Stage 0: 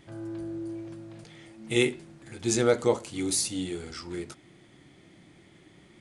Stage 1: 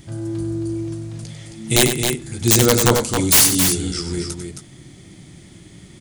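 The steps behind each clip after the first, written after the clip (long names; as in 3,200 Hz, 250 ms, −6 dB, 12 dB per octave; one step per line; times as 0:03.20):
bass and treble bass +12 dB, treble +14 dB
wrap-around overflow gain 9.5 dB
loudspeakers that aren't time-aligned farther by 33 metres −9 dB, 92 metres −6 dB
level +4.5 dB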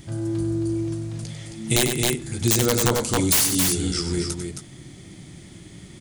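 downward compressor 4 to 1, threshold −17 dBFS, peak gain reduction 7.5 dB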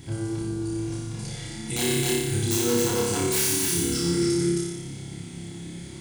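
brickwall limiter −19.5 dBFS, peak gain reduction 11 dB
notch comb filter 610 Hz
on a send: flutter between parallel walls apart 5 metres, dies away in 1.1 s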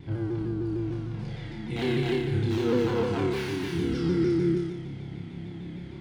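high-frequency loss of the air 350 metres
pitch modulation by a square or saw wave saw down 6.6 Hz, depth 100 cents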